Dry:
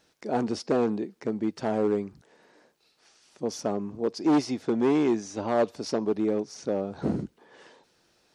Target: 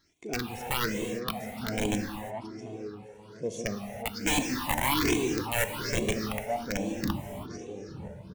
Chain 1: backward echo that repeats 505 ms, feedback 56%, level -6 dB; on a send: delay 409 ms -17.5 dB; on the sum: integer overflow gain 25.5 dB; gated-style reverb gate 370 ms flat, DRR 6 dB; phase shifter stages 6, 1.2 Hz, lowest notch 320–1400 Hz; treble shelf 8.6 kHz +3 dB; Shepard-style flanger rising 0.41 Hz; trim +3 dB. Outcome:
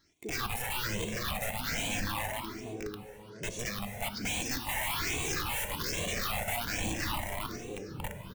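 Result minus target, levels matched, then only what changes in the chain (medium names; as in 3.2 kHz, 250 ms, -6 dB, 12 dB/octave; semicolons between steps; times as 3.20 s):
integer overflow: distortion +16 dB
change: integer overflow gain 16 dB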